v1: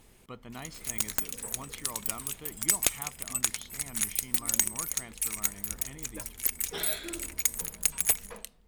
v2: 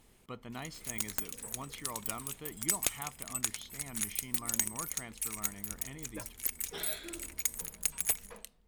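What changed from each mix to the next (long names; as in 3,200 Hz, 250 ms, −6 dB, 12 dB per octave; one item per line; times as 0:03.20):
background −5.5 dB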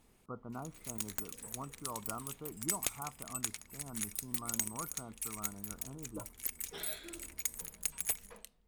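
speech: add linear-phase brick-wall low-pass 1,500 Hz
background −4.0 dB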